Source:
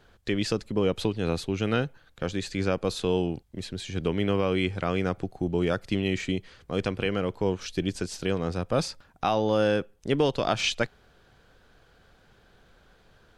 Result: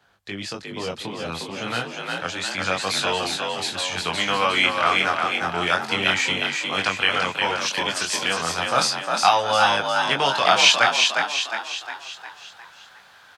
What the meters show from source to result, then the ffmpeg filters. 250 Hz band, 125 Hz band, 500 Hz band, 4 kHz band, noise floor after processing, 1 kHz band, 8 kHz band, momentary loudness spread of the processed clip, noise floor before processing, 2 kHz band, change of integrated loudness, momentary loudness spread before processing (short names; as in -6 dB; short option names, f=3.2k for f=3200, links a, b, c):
-5.0 dB, -6.5 dB, 0.0 dB, +14.0 dB, -49 dBFS, +13.0 dB, +13.5 dB, 13 LU, -60 dBFS, +14.0 dB, +7.0 dB, 7 LU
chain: -filter_complex "[0:a]highpass=87,lowshelf=f=580:t=q:w=1.5:g=-6.5,flanger=delay=20:depth=5.2:speed=0.31,asplit=7[a][b][c][d][e][f][g];[b]adelay=357,afreqshift=47,volume=-4dB[h];[c]adelay=714,afreqshift=94,volume=-10dB[i];[d]adelay=1071,afreqshift=141,volume=-16dB[j];[e]adelay=1428,afreqshift=188,volume=-22.1dB[k];[f]adelay=1785,afreqshift=235,volume=-28.1dB[l];[g]adelay=2142,afreqshift=282,volume=-34.1dB[m];[a][h][i][j][k][l][m]amix=inputs=7:normalize=0,acrossover=split=240|770[n][o][p];[p]dynaudnorm=f=530:g=9:m=13dB[q];[n][o][q]amix=inputs=3:normalize=0,volume=3dB"